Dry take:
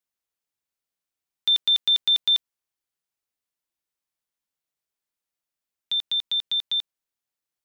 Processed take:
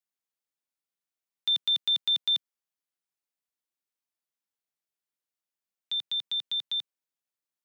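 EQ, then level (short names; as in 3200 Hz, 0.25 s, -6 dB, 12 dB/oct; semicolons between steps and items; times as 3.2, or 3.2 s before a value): HPF 140 Hz 24 dB/oct; -5.5 dB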